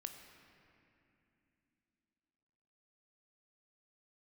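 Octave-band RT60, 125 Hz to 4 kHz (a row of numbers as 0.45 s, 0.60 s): 3.4 s, 4.2 s, 3.1 s, 2.6 s, 2.9 s, 2.0 s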